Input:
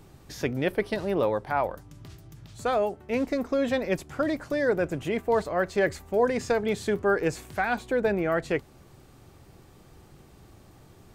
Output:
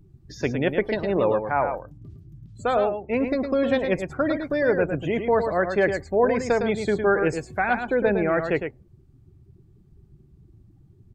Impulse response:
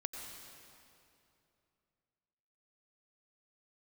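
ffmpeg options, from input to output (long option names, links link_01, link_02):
-filter_complex "[0:a]afftdn=noise_reduction=26:noise_floor=-42,asplit=2[link_01][link_02];[link_02]aecho=0:1:108:0.447[link_03];[link_01][link_03]amix=inputs=2:normalize=0,volume=3dB"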